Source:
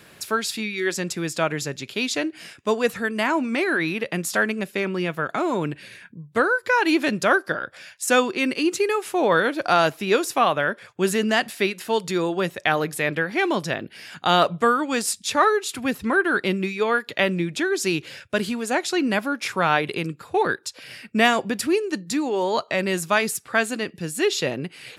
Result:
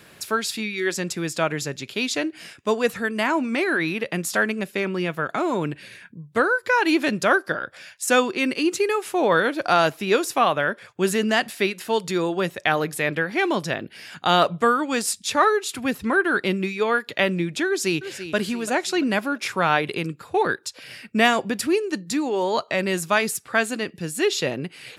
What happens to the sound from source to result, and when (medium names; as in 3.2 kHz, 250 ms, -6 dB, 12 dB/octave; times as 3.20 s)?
17.67–18.35 s: echo throw 340 ms, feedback 45%, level -11.5 dB